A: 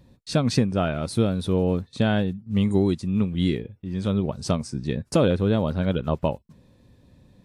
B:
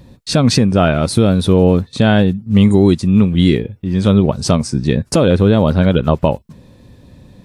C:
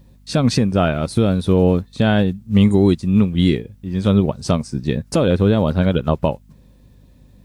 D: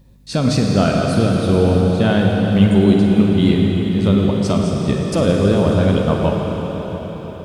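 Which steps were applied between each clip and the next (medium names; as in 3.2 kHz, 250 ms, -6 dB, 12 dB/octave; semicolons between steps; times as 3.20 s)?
loudness maximiser +13.5 dB; trim -1 dB
word length cut 10-bit, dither triangular; hum 50 Hz, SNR 25 dB; upward expansion 1.5:1, over -24 dBFS; trim -2.5 dB
reverberation RT60 5.2 s, pre-delay 34 ms, DRR -1 dB; trim -1.5 dB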